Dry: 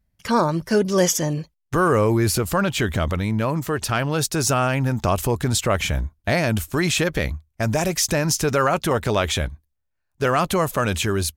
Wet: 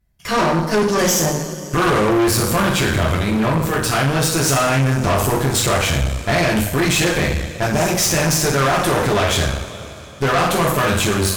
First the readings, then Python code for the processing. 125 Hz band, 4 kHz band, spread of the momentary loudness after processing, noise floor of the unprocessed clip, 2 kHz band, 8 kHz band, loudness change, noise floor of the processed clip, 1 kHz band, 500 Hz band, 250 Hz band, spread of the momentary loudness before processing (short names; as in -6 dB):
+3.5 dB, +6.0 dB, 5 LU, -75 dBFS, +5.5 dB, +5.0 dB, +4.0 dB, -33 dBFS, +4.5 dB, +3.0 dB, +4.0 dB, 6 LU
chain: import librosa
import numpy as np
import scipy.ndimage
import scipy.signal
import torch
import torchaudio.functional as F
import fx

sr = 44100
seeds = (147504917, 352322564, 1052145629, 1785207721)

y = fx.rev_double_slope(x, sr, seeds[0], early_s=0.59, late_s=3.7, knee_db=-18, drr_db=-5.0)
y = fx.tube_stage(y, sr, drive_db=18.0, bias=0.75)
y = y * librosa.db_to_amplitude(5.0)